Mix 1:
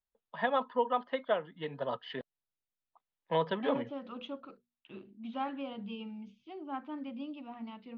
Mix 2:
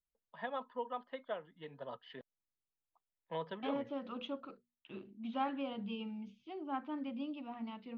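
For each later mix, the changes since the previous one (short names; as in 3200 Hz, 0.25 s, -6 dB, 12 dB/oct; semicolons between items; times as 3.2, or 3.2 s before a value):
first voice -10.5 dB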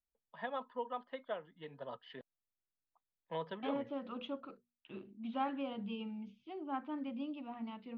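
second voice: add air absorption 88 m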